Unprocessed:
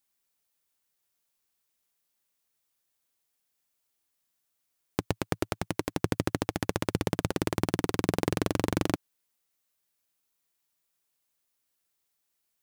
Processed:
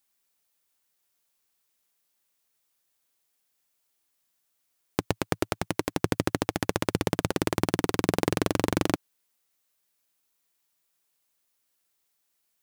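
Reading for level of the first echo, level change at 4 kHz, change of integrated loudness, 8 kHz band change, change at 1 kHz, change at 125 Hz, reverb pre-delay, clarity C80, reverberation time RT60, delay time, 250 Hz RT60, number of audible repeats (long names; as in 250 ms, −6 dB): no echo audible, +3.5 dB, +2.5 dB, +3.5 dB, +3.5 dB, +1.0 dB, no reverb audible, no reverb audible, no reverb audible, no echo audible, no reverb audible, no echo audible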